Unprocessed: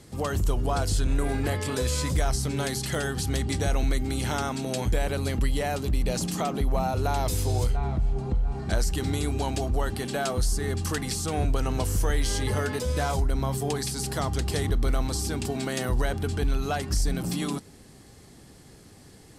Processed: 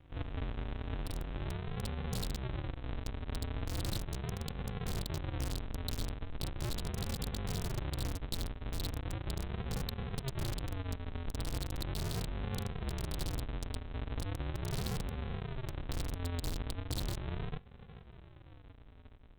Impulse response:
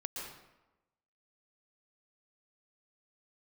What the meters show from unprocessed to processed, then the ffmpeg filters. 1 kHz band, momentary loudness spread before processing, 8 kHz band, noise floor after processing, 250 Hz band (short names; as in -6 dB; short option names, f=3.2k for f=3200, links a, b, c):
-15.5 dB, 3 LU, -15.5 dB, -55 dBFS, -12.0 dB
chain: -af "aresample=8000,acrusher=samples=36:mix=1:aa=0.000001:lfo=1:lforange=21.6:lforate=0.38,aresample=44100,dynaudnorm=f=430:g=9:m=4dB,aeval=exprs='(mod(6.31*val(0)+1,2)-1)/6.31':c=same,acompressor=threshold=-32dB:ratio=4,volume=-4.5dB" -ar 48000 -c:a libopus -b:a 32k